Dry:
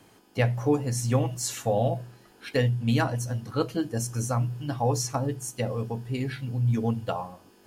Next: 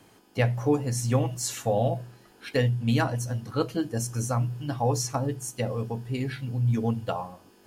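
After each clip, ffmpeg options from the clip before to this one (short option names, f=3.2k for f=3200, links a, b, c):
-af anull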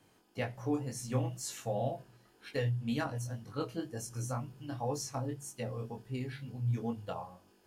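-af "flanger=delay=20:depth=4.3:speed=2,volume=-6.5dB"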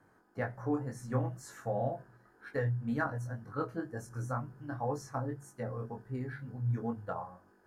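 -af "highshelf=f=2.1k:t=q:w=3:g=-10"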